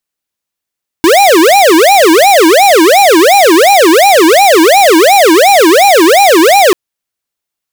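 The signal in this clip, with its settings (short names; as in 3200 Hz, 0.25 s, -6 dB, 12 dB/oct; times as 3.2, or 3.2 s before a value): siren wail 314–813 Hz 2.8/s square -4.5 dBFS 5.69 s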